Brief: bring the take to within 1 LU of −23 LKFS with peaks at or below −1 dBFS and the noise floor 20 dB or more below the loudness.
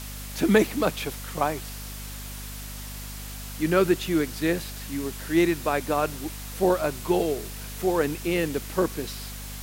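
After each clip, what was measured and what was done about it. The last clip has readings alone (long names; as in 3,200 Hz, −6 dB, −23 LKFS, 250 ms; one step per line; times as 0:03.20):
mains hum 50 Hz; hum harmonics up to 250 Hz; level of the hum −36 dBFS; background noise floor −37 dBFS; target noise floor −47 dBFS; integrated loudness −26.5 LKFS; sample peak −5.0 dBFS; target loudness −23.0 LKFS
→ mains-hum notches 50/100/150/200/250 Hz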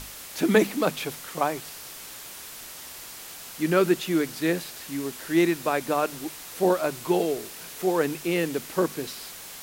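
mains hum none found; background noise floor −42 dBFS; target noise floor −46 dBFS
→ broadband denoise 6 dB, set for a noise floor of −42 dBFS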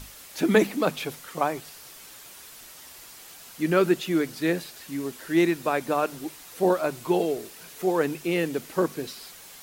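background noise floor −46 dBFS; integrated loudness −26.0 LKFS; sample peak −5.0 dBFS; target loudness −23.0 LKFS
→ level +3 dB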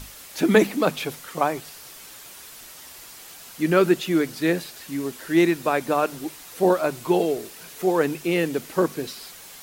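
integrated loudness −23.0 LKFS; sample peak −2.0 dBFS; background noise floor −43 dBFS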